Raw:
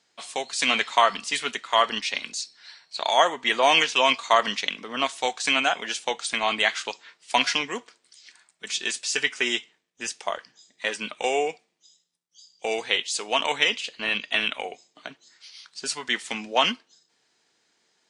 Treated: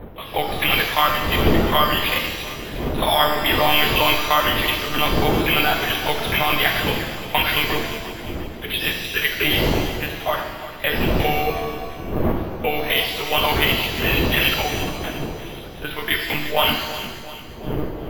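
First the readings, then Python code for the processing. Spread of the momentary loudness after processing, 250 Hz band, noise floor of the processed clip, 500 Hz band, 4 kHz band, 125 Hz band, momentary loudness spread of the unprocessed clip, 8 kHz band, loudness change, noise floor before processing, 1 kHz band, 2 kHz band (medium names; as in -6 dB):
12 LU, +12.0 dB, -35 dBFS, +5.0 dB, +4.5 dB, +26.0 dB, 14 LU, -1.0 dB, +4.5 dB, -71 dBFS, +3.5 dB, +5.0 dB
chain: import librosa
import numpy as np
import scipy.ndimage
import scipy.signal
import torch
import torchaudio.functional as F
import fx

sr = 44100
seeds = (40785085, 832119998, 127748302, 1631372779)

p1 = fx.dmg_wind(x, sr, seeds[0], corner_hz=370.0, level_db=-32.0)
p2 = fx.over_compress(p1, sr, threshold_db=-26.0, ratio=-1.0)
p3 = p1 + (p2 * librosa.db_to_amplitude(0.5))
p4 = fx.lpc_monotone(p3, sr, seeds[1], pitch_hz=150.0, order=16)
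p5 = p4 + fx.echo_feedback(p4, sr, ms=350, feedback_pct=47, wet_db=-13.0, dry=0)
p6 = np.repeat(scipy.signal.resample_poly(p5, 1, 3), 3)[:len(p5)]
p7 = fx.rev_shimmer(p6, sr, seeds[2], rt60_s=1.1, semitones=7, shimmer_db=-8, drr_db=3.0)
y = p7 * librosa.db_to_amplitude(-1.5)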